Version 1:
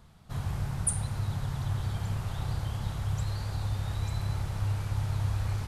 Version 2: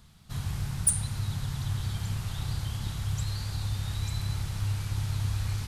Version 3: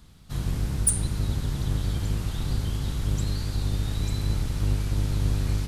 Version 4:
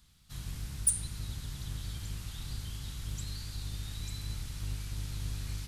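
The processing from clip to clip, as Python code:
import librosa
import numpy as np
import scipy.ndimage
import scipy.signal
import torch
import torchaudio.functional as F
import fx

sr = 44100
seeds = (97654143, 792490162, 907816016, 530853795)

y1 = np.minimum(x, 2.0 * 10.0 ** (-21.5 / 20.0) - x)
y1 = fx.curve_eq(y1, sr, hz=(220.0, 590.0, 4000.0), db=(0, -7, 6))
y2 = fx.octave_divider(y1, sr, octaves=1, level_db=2.0)
y2 = F.gain(torch.from_numpy(y2), 1.5).numpy()
y3 = fx.tone_stack(y2, sr, knobs='5-5-5')
y3 = F.gain(torch.from_numpy(y3), 1.5).numpy()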